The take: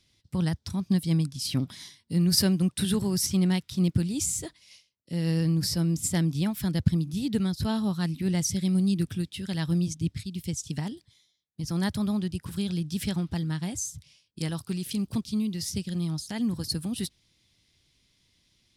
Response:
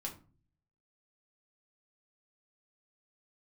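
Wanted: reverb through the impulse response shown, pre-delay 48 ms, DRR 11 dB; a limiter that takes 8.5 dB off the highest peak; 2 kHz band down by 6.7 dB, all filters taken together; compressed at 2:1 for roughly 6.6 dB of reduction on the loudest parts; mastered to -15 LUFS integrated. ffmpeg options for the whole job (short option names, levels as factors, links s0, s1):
-filter_complex "[0:a]equalizer=f=2000:t=o:g=-8.5,acompressor=threshold=0.0355:ratio=2,alimiter=limit=0.0668:level=0:latency=1,asplit=2[s0][s1];[1:a]atrim=start_sample=2205,adelay=48[s2];[s1][s2]afir=irnorm=-1:irlink=0,volume=0.316[s3];[s0][s3]amix=inputs=2:normalize=0,volume=7.08"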